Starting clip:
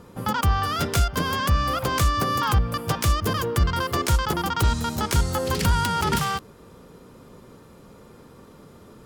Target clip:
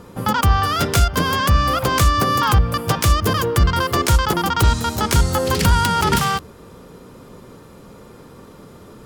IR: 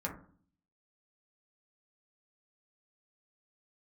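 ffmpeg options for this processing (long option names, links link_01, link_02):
-af "bandreject=frequency=77.33:width_type=h:width=4,bandreject=frequency=154.66:width_type=h:width=4,bandreject=frequency=231.99:width_type=h:width=4,volume=6dB"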